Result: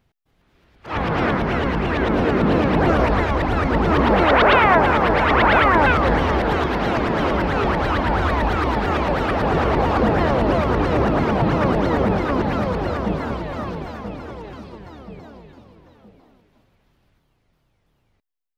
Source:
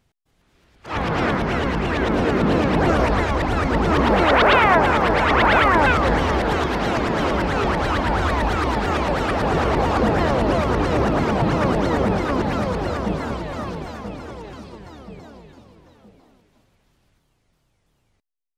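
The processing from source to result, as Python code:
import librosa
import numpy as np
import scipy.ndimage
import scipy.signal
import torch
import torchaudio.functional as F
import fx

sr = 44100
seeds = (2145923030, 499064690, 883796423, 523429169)

y = fx.peak_eq(x, sr, hz=8000.0, db=-9.5, octaves=1.3)
y = y * 10.0 ** (1.0 / 20.0)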